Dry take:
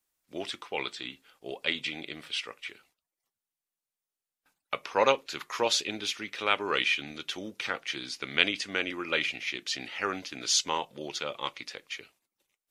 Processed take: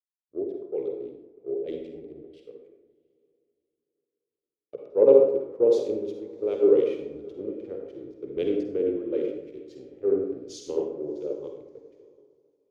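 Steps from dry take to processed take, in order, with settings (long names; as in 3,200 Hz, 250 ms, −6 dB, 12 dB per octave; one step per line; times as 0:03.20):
adaptive Wiener filter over 15 samples
drawn EQ curve 120 Hz 0 dB, 210 Hz −5 dB, 430 Hz +12 dB, 910 Hz −21 dB, 1,600 Hz −28 dB
in parallel at −1 dB: brickwall limiter −23 dBFS, peak gain reduction 11.5 dB
on the sum: feedback delay with all-pass diffusion 703 ms, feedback 49%, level −14 dB
on a send at −1 dB: convolution reverb RT60 1.4 s, pre-delay 43 ms
on the sum: multiband upward and downward expander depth 100%
level −5 dB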